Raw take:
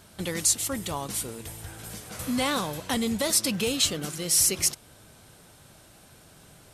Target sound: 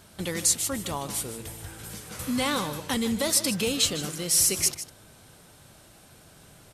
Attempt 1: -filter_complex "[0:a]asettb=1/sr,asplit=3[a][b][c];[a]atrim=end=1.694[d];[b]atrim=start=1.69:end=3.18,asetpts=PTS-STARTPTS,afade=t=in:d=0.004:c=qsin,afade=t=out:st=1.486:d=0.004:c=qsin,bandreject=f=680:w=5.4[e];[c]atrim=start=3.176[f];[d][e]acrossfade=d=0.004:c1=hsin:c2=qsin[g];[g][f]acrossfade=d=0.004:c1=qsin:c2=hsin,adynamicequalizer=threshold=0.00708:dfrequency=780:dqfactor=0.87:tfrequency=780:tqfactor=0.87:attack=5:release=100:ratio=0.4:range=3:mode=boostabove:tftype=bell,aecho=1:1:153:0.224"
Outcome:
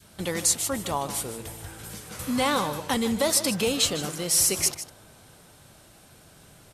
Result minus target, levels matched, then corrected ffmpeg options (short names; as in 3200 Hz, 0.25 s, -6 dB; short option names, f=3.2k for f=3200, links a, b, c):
1000 Hz band +4.5 dB
-filter_complex "[0:a]asettb=1/sr,asplit=3[a][b][c];[a]atrim=end=1.694[d];[b]atrim=start=1.69:end=3.18,asetpts=PTS-STARTPTS,afade=t=in:d=0.004:c=qsin,afade=t=out:st=1.486:d=0.004:c=qsin,bandreject=f=680:w=5.4[e];[c]atrim=start=3.176[f];[d][e]acrossfade=d=0.004:c1=hsin:c2=qsin[g];[g][f]acrossfade=d=0.004:c1=qsin:c2=hsin,aecho=1:1:153:0.224"